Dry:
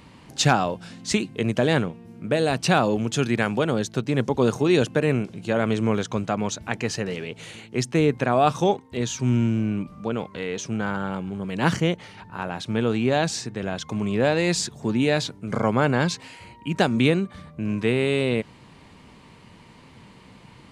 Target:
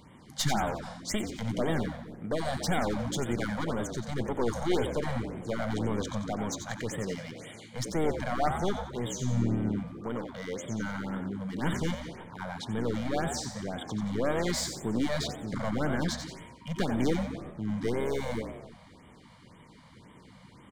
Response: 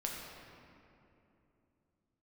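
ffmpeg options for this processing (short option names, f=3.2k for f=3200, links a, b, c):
-filter_complex "[0:a]aeval=exprs='clip(val(0),-1,0.0562)':c=same,asuperstop=centerf=2600:order=4:qfactor=5.6,asplit=6[a][b][c][d][e][f];[b]adelay=90,afreqshift=69,volume=-7.5dB[g];[c]adelay=180,afreqshift=138,volume=-14.6dB[h];[d]adelay=270,afreqshift=207,volume=-21.8dB[i];[e]adelay=360,afreqshift=276,volume=-28.9dB[j];[f]adelay=450,afreqshift=345,volume=-36dB[k];[a][g][h][i][j][k]amix=inputs=6:normalize=0,asplit=2[l][m];[1:a]atrim=start_sample=2205,afade=t=out:st=0.44:d=0.01,atrim=end_sample=19845[n];[m][n]afir=irnorm=-1:irlink=0,volume=-11.5dB[o];[l][o]amix=inputs=2:normalize=0,afftfilt=real='re*(1-between(b*sr/1024,310*pow(5400/310,0.5+0.5*sin(2*PI*1.9*pts/sr))/1.41,310*pow(5400/310,0.5+0.5*sin(2*PI*1.9*pts/sr))*1.41))':imag='im*(1-between(b*sr/1024,310*pow(5400/310,0.5+0.5*sin(2*PI*1.9*pts/sr))/1.41,310*pow(5400/310,0.5+0.5*sin(2*PI*1.9*pts/sr))*1.41))':win_size=1024:overlap=0.75,volume=-7dB"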